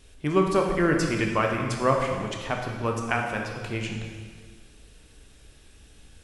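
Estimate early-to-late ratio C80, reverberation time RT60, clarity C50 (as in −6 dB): 5.0 dB, 1.7 s, 3.0 dB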